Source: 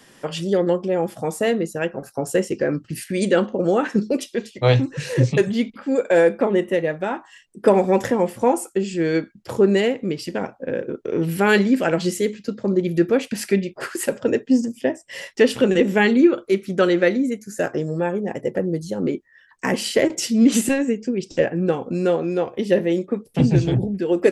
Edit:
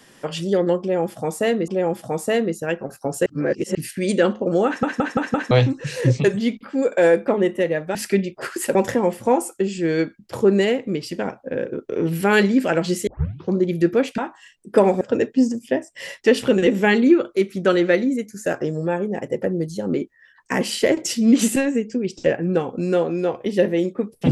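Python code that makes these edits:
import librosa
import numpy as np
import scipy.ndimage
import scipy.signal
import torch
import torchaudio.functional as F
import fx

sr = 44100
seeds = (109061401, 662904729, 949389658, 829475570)

y = fx.edit(x, sr, fx.repeat(start_s=0.81, length_s=0.87, count=2),
    fx.reverse_span(start_s=2.39, length_s=0.49),
    fx.stutter_over(start_s=3.79, slice_s=0.17, count=5),
    fx.swap(start_s=7.08, length_s=0.83, other_s=13.34, other_length_s=0.8),
    fx.tape_start(start_s=12.23, length_s=0.47), tone=tone)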